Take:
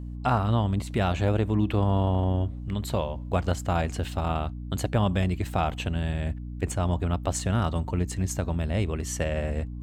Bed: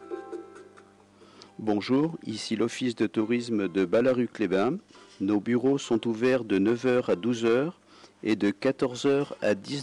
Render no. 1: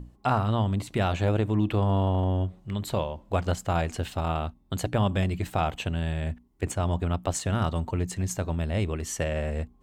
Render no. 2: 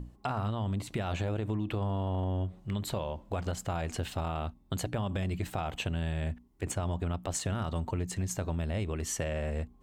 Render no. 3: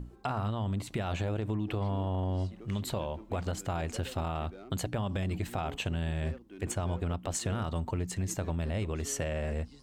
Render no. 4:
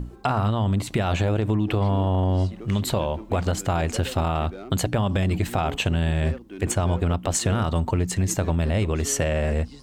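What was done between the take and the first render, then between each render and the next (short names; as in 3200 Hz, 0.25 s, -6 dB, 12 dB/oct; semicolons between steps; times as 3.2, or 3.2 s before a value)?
notches 60/120/180/240/300 Hz
limiter -19.5 dBFS, peak gain reduction 8 dB; compressor, threshold -29 dBFS, peak gain reduction 6.5 dB
add bed -24 dB
gain +10 dB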